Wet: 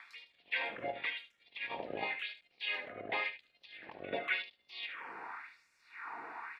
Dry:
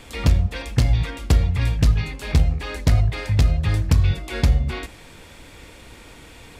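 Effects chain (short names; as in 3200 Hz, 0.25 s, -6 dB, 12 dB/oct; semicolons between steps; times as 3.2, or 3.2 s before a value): octaver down 2 oct, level 0 dB; HPF 270 Hz 6 dB/oct; high shelf 2100 Hz -10.5 dB; negative-ratio compressor -32 dBFS, ratio -1; envelope phaser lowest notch 450 Hz, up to 1500 Hz, full sweep at -26 dBFS; LFO high-pass sine 0.92 Hz 600–6700 Hz; crackle 560/s -70 dBFS; air absorption 380 m; echo 74 ms -12 dB; gain +5 dB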